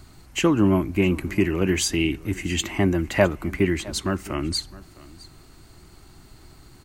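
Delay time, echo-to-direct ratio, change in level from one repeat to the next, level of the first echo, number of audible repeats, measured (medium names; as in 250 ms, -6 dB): 661 ms, -20.5 dB, no regular repeats, -20.5 dB, 1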